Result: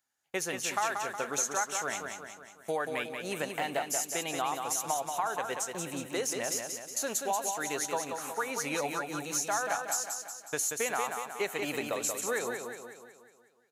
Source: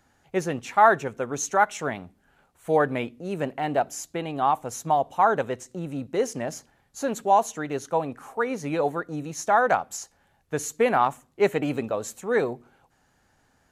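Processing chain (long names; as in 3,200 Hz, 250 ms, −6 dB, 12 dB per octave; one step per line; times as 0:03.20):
noise gate −46 dBFS, range −22 dB
spectral tilt +4 dB per octave
downward compressor 5 to 1, threshold −30 dBFS, peak gain reduction 16.5 dB
repeating echo 183 ms, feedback 52%, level −5.5 dB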